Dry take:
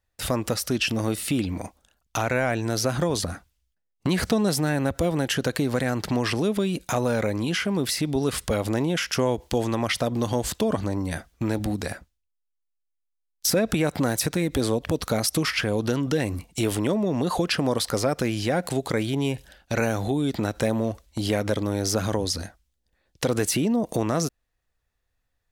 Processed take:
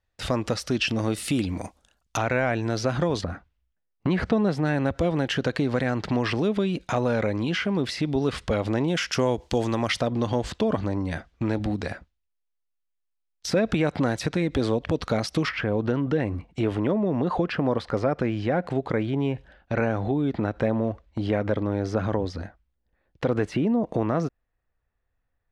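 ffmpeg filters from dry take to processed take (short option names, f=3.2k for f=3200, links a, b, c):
-af "asetnsamples=n=441:p=0,asendcmd='1.16 lowpass f 9400;2.17 lowpass f 4000;3.21 lowpass f 2300;4.65 lowpass f 3900;8.88 lowpass f 6800;10.01 lowpass f 3800;15.49 lowpass f 2000',lowpass=5.3k"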